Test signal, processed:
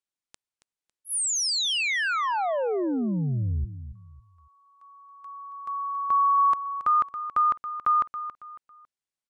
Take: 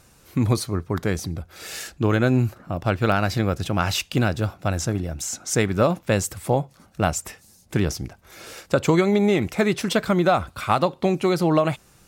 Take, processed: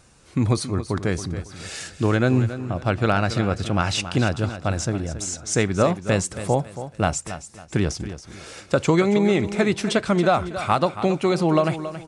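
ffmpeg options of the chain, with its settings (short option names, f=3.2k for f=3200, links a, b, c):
-af "aecho=1:1:276|552|828:0.251|0.0804|0.0257,aresample=22050,aresample=44100"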